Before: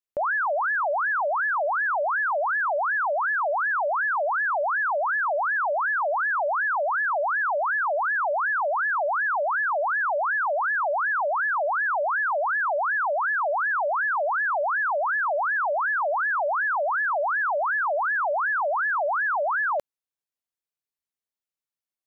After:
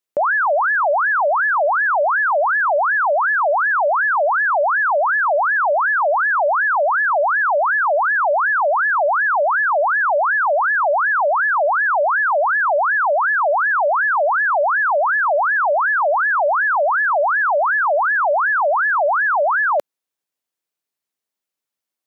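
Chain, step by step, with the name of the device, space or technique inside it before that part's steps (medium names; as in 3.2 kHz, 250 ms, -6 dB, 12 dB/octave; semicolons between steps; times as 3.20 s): filter by subtraction (in parallel: low-pass 290 Hz + polarity flip); on the sum: trim +7 dB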